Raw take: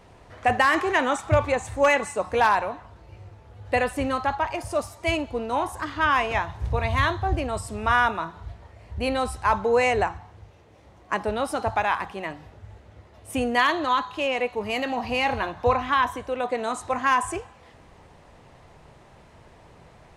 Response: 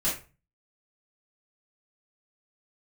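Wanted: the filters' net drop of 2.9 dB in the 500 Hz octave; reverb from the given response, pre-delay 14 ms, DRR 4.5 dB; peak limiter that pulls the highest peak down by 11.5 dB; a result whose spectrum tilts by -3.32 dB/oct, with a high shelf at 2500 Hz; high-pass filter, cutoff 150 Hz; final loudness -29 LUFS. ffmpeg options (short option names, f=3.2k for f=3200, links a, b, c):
-filter_complex "[0:a]highpass=150,equalizer=f=500:t=o:g=-3.5,highshelf=f=2.5k:g=4.5,alimiter=limit=-16.5dB:level=0:latency=1,asplit=2[a][b];[1:a]atrim=start_sample=2205,adelay=14[c];[b][c]afir=irnorm=-1:irlink=0,volume=-13dB[d];[a][d]amix=inputs=2:normalize=0,volume=-2dB"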